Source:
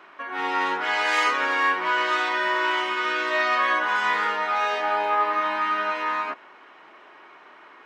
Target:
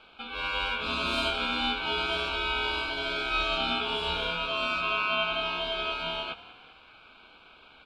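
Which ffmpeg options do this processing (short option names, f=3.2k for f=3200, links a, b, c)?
-filter_complex "[0:a]equalizer=f=500:t=o:w=1:g=9,equalizer=f=1k:t=o:w=1:g=-4,equalizer=f=4k:t=o:w=1:g=-12,asplit=2[a][b];[b]asplit=4[c][d][e][f];[c]adelay=195,afreqshift=-40,volume=-17.5dB[g];[d]adelay=390,afreqshift=-80,volume=-23.5dB[h];[e]adelay=585,afreqshift=-120,volume=-29.5dB[i];[f]adelay=780,afreqshift=-160,volume=-35.6dB[j];[g][h][i][j]amix=inputs=4:normalize=0[k];[a][k]amix=inputs=2:normalize=0,aeval=exprs='val(0)*sin(2*PI*1900*n/s)':c=same,volume=-2.5dB"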